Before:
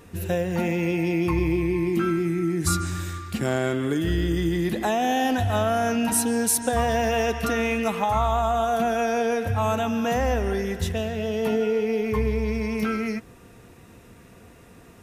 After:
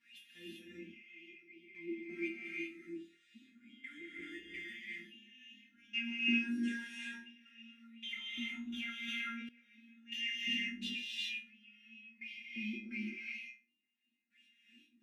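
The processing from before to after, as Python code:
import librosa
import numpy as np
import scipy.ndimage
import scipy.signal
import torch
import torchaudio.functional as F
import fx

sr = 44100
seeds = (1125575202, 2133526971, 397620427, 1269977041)

p1 = scipy.signal.sosfilt(scipy.signal.ellip(3, 1.0, 40, [230.0, 2100.0], 'bandstop', fs=sr, output='sos'), x)
p2 = fx.low_shelf_res(p1, sr, hz=190.0, db=-8.0, q=3.0)
p3 = fx.rider(p2, sr, range_db=4, speed_s=2.0)
p4 = fx.step_gate(p3, sr, bpm=86, pattern='x.x.......x.', floor_db=-24.0, edge_ms=4.5)
p5 = fx.resonator_bank(p4, sr, root=58, chord='fifth', decay_s=0.21)
p6 = fx.wah_lfo(p5, sr, hz=1.4, low_hz=290.0, high_hz=3200.0, q=6.9)
p7 = fx.doubler(p6, sr, ms=38.0, db=-7, at=(5.62, 7.35))
p8 = p7 + fx.room_flutter(p7, sr, wall_m=4.1, rt60_s=0.29, dry=0)
p9 = fx.rev_gated(p8, sr, seeds[0], gate_ms=420, shape='rising', drr_db=-4.0)
p10 = fx.env_flatten(p9, sr, amount_pct=70, at=(9.08, 9.49))
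y = p10 * librosa.db_to_amplitude(16.0)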